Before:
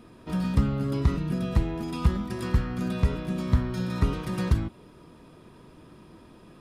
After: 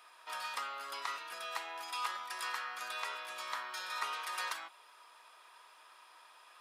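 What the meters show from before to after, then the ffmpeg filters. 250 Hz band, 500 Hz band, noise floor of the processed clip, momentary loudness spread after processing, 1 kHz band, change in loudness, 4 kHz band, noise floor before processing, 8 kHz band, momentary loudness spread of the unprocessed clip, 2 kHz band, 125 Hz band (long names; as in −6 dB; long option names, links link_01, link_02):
below −35 dB, −17.0 dB, −60 dBFS, 20 LU, +0.5 dB, −12.0 dB, +1.5 dB, −52 dBFS, +1.5 dB, 5 LU, +1.5 dB, below −40 dB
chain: -af "highpass=frequency=870:width=0.5412,highpass=frequency=870:width=1.3066,volume=1.5dB"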